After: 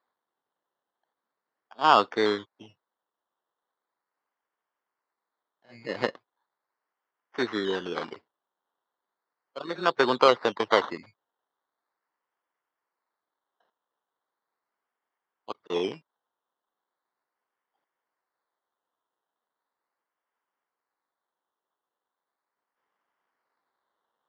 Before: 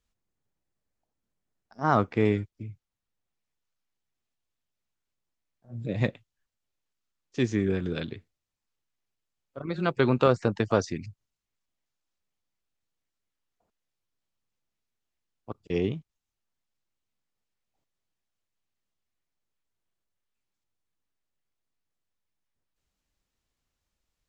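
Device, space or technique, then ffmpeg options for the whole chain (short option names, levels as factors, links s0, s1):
circuit-bent sampling toy: -af "acrusher=samples=15:mix=1:aa=0.000001:lfo=1:lforange=9:lforate=0.38,highpass=520,equalizer=f=620:t=q:w=4:g=-3,equalizer=f=1000:t=q:w=4:g=4,equalizer=f=2500:t=q:w=4:g=-10,lowpass=f=4100:w=0.5412,lowpass=f=4100:w=1.3066,volume=2.11"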